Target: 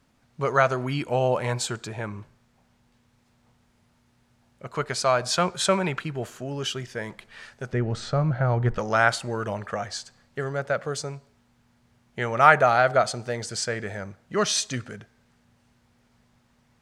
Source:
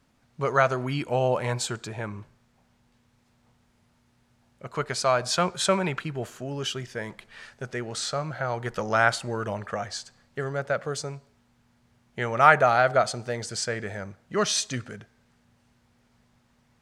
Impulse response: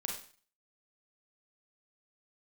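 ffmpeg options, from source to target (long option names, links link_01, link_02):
-filter_complex "[0:a]asettb=1/sr,asplit=3[link_01][link_02][link_03];[link_01]atrim=end=7.724[link_04];[link_02]atrim=start=7.72:end=8.78,asetpts=PTS-STARTPTS,afade=type=in:duration=0.004:curve=qsin,afade=type=out:start_time=1.056:duration=0.004:curve=qsin,aemphasis=mode=reproduction:type=riaa[link_05];[link_03]atrim=start=8.776[link_06];[link_04][link_05]acrossfade=duration=0.004:curve1=hsin:curve2=qsin[link_07];[link_07][link_06]acrossfade=duration=0.004:curve1=qsin:curve2=hsin,volume=1dB"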